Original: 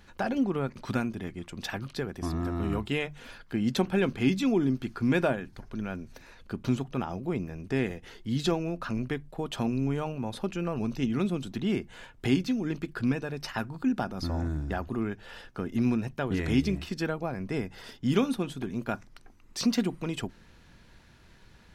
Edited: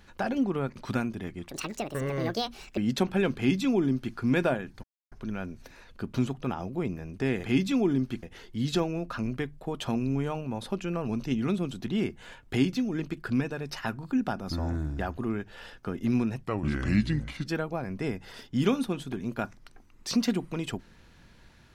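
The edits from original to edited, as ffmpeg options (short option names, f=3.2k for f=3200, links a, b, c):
-filter_complex "[0:a]asplit=8[a][b][c][d][e][f][g][h];[a]atrim=end=1.494[i];[b]atrim=start=1.49:end=3.56,asetpts=PTS-STARTPTS,asetrate=71001,aresample=44100[j];[c]atrim=start=3.556:end=5.62,asetpts=PTS-STARTPTS,afade=t=out:st=2.06:d=0.004:c=hsin,apad=pad_dur=0.28[k];[d]atrim=start=5.62:end=7.942,asetpts=PTS-STARTPTS,afade=t=in:d=0.004:c=hsin[l];[e]atrim=start=4.148:end=4.942[m];[f]atrim=start=7.938:end=16.154[n];[g]atrim=start=16.15:end=16.96,asetpts=PTS-STARTPTS,asetrate=34839,aresample=44100,atrim=end_sample=45216,asetpts=PTS-STARTPTS[o];[h]atrim=start=16.956[p];[i][j]acrossfade=d=0.004:c1=hsin:c2=hsin[q];[k][l]concat=n=2:v=0:a=1[r];[q][r]acrossfade=d=0.004:c1=hsin:c2=hsin[s];[s][m]acrossfade=d=0.004:c1=hsin:c2=hsin[t];[t][n]acrossfade=d=0.004:c1=hsin:c2=hsin[u];[u][o]acrossfade=d=0.004:c1=hsin:c2=hsin[v];[v][p]acrossfade=d=0.004:c1=hsin:c2=hsin"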